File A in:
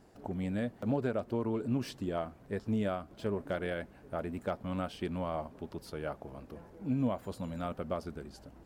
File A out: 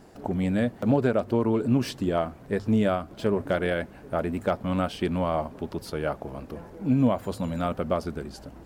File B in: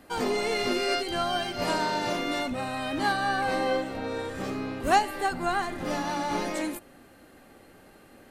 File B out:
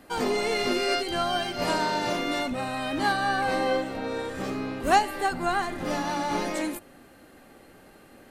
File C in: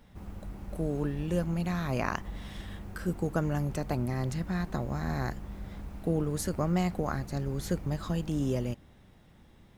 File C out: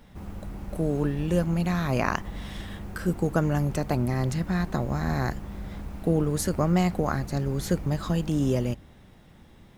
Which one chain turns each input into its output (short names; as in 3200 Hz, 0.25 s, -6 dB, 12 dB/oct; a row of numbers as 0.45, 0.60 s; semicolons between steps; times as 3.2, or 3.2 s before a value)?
notches 50/100 Hz; match loudness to -27 LUFS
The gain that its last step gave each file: +9.5, +1.5, +5.5 dB